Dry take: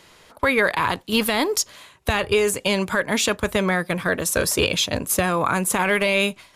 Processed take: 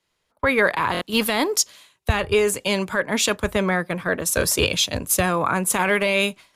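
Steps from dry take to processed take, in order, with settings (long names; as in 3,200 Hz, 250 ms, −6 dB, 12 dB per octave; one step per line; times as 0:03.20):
buffer that repeats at 0:00.92, samples 1,024, times 3
multiband upward and downward expander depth 70%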